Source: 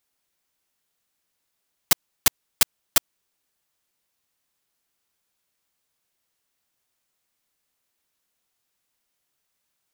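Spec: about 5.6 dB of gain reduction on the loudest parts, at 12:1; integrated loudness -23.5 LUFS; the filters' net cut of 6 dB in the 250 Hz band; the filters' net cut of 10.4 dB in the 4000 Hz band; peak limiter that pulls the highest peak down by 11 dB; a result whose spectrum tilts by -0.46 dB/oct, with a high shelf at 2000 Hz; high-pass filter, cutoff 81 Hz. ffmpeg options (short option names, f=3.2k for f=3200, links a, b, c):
-af "highpass=81,equalizer=f=250:t=o:g=-8,highshelf=f=2k:g=-5.5,equalizer=f=4k:t=o:g=-8,acompressor=threshold=-25dB:ratio=12,volume=18dB,alimiter=limit=-4dB:level=0:latency=1"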